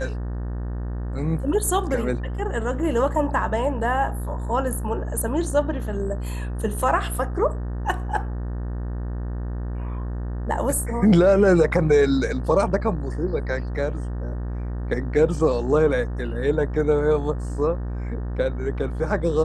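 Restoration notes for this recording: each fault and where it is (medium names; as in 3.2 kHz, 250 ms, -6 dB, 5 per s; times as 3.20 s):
buzz 60 Hz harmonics 31 -28 dBFS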